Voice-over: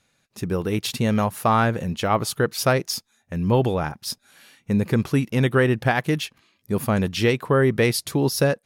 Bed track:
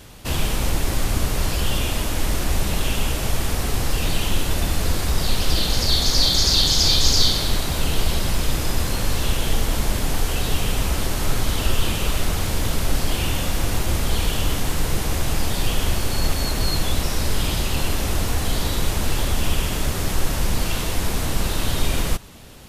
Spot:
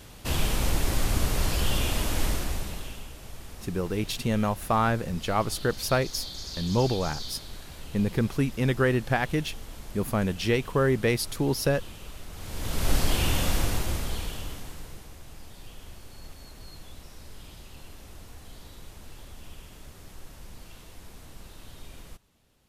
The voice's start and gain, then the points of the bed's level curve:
3.25 s, −5.0 dB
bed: 0:02.25 −4 dB
0:03.09 −20.5 dB
0:12.29 −20.5 dB
0:12.90 −2.5 dB
0:13.53 −2.5 dB
0:15.15 −24 dB

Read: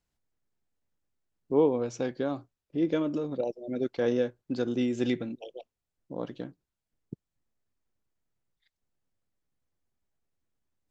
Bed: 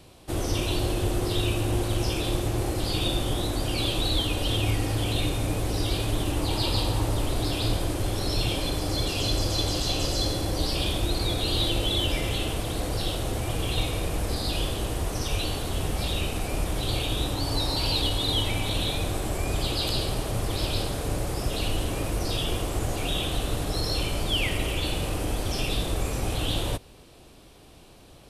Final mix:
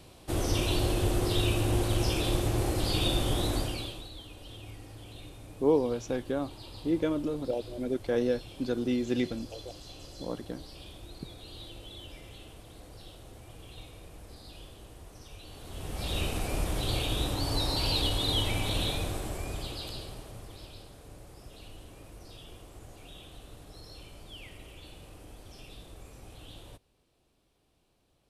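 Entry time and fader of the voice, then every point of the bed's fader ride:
4.10 s, −1.0 dB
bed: 0:03.57 −1.5 dB
0:04.10 −20.5 dB
0:15.42 −20.5 dB
0:16.19 −3 dB
0:18.85 −3 dB
0:20.79 −21 dB

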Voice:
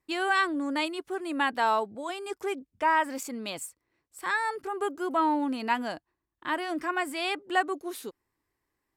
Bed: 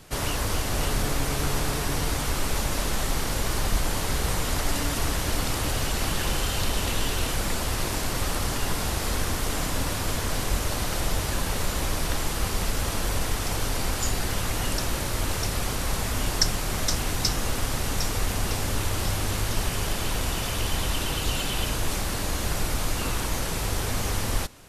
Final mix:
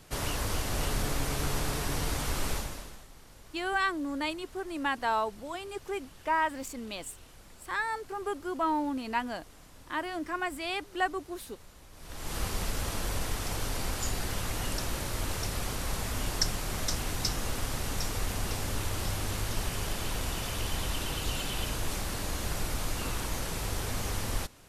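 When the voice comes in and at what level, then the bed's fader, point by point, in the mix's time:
3.45 s, −3.5 dB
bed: 0:02.52 −5 dB
0:03.08 −26.5 dB
0:11.91 −26.5 dB
0:12.35 −6 dB

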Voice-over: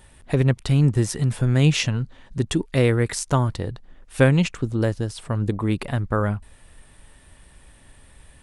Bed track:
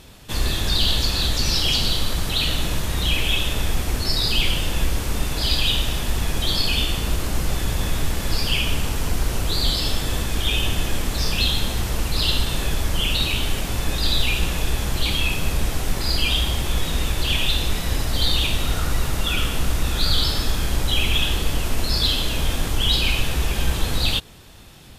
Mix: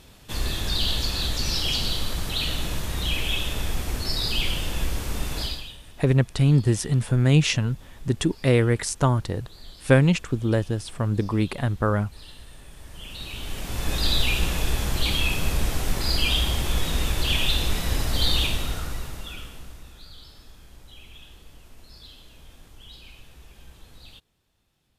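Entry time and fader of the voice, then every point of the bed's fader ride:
5.70 s, −0.5 dB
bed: 0:05.41 −5 dB
0:05.78 −25.5 dB
0:12.66 −25.5 dB
0:13.94 −2 dB
0:18.41 −2 dB
0:20.10 −26.5 dB

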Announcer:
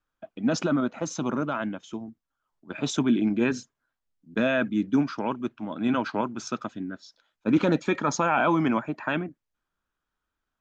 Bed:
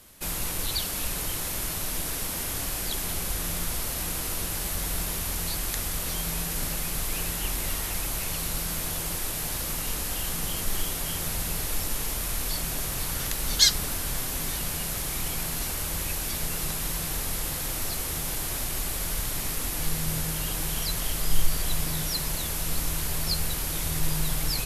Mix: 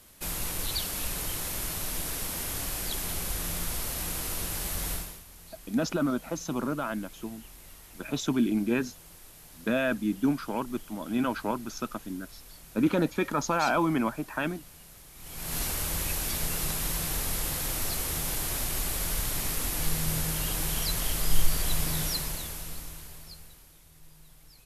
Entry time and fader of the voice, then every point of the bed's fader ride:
5.30 s, −3.0 dB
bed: 0:04.93 −2.5 dB
0:05.25 −20 dB
0:15.14 −20 dB
0:15.56 −0.5 dB
0:22.06 −0.5 dB
0:23.84 −27.5 dB

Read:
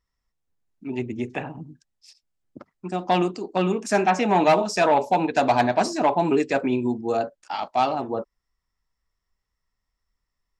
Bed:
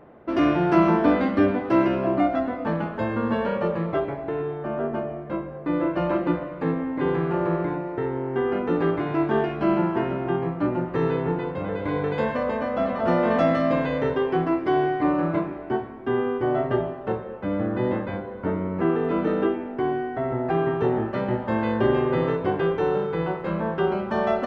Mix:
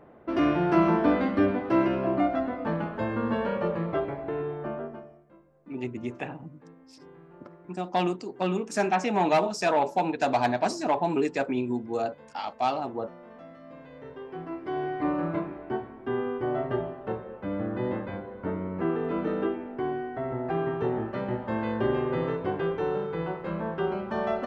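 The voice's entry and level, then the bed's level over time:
4.85 s, −5.0 dB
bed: 0:04.67 −3.5 dB
0:05.33 −27 dB
0:13.57 −27 dB
0:15.05 −5.5 dB

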